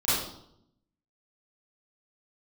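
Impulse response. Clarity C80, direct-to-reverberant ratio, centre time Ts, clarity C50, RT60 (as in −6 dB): 2.5 dB, −13.5 dB, 75 ms, −2.5 dB, 0.75 s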